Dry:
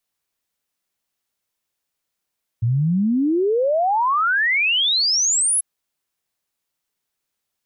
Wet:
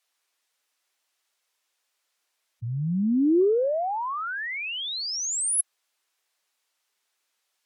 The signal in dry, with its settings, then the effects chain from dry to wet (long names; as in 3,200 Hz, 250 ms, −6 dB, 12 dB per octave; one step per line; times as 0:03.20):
exponential sine sweep 110 Hz → 11,000 Hz 2.99 s −15.5 dBFS
meter weighting curve A
gate on every frequency bin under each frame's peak −15 dB strong
compressor whose output falls as the input rises −24 dBFS, ratio −0.5